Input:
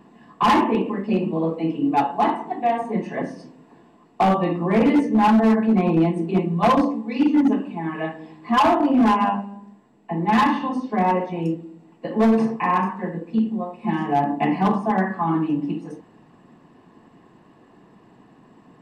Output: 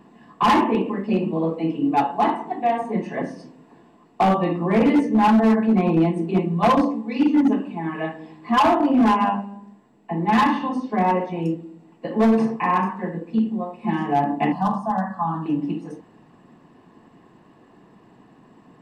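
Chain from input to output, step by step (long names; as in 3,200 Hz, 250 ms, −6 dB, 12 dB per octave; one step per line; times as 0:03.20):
0:14.52–0:15.46: phaser with its sweep stopped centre 930 Hz, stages 4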